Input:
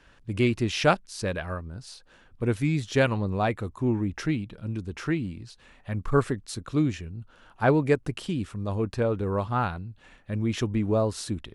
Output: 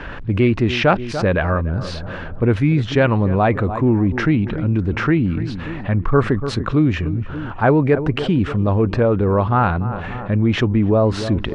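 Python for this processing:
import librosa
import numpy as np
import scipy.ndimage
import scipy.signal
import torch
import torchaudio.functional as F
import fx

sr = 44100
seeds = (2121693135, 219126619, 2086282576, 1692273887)

p1 = scipy.signal.sosfilt(scipy.signal.butter(2, 2200.0, 'lowpass', fs=sr, output='sos'), x)
p2 = fx.rider(p1, sr, range_db=3, speed_s=0.5)
p3 = p1 + F.gain(torch.from_numpy(p2), 0.5).numpy()
p4 = fx.echo_filtered(p3, sr, ms=292, feedback_pct=45, hz=1600.0, wet_db=-19.0)
y = fx.env_flatten(p4, sr, amount_pct=50)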